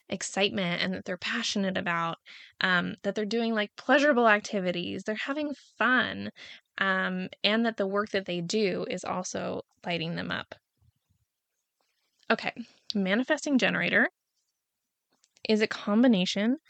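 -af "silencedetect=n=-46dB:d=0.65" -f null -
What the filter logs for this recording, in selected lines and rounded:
silence_start: 10.54
silence_end: 12.23 | silence_duration: 1.69
silence_start: 14.09
silence_end: 15.24 | silence_duration: 1.15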